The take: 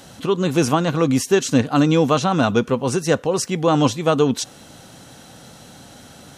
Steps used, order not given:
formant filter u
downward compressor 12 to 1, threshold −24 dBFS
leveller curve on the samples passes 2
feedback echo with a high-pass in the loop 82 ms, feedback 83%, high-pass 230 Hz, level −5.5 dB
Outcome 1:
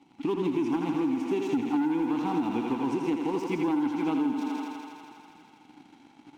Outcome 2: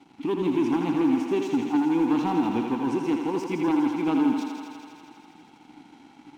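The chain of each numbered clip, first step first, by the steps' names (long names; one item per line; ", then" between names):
formant filter, then leveller curve on the samples, then feedback echo with a high-pass in the loop, then downward compressor
formant filter, then downward compressor, then leveller curve on the samples, then feedback echo with a high-pass in the loop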